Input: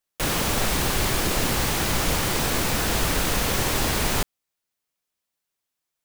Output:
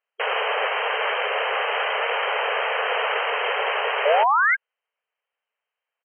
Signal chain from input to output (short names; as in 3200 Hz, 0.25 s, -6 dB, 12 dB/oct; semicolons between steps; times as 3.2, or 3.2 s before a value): painted sound rise, 4.05–4.55, 550–2200 Hz -23 dBFS; harmoniser -5 st -4 dB; brick-wall FIR band-pass 410–3200 Hz; gain +3.5 dB